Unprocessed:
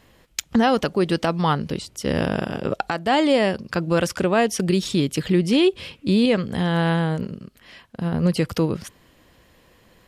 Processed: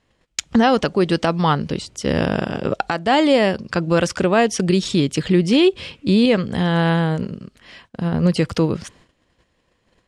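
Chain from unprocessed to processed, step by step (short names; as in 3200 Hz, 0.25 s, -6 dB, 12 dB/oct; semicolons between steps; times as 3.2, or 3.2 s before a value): LPF 8900 Hz 24 dB/oct; gate -52 dBFS, range -14 dB; gain +3 dB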